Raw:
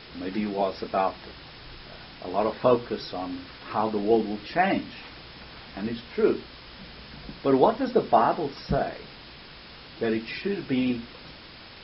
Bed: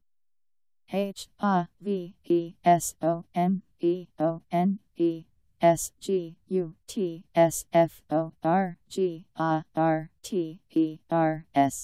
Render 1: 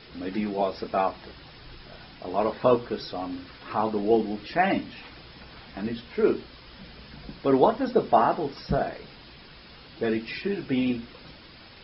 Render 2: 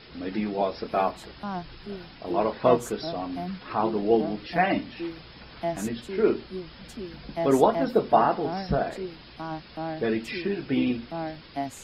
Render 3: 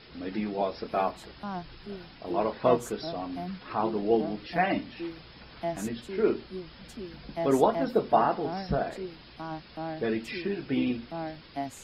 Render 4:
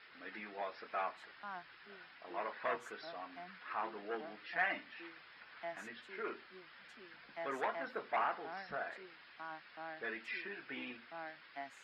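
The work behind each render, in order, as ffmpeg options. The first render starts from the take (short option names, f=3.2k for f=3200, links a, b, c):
-af "afftdn=nr=6:nf=-46"
-filter_complex "[1:a]volume=-9dB[a];[0:a][a]amix=inputs=2:normalize=0"
-af "volume=-3dB"
-af "asoftclip=type=tanh:threshold=-18dB,bandpass=f=1.7k:t=q:w=1.9:csg=0"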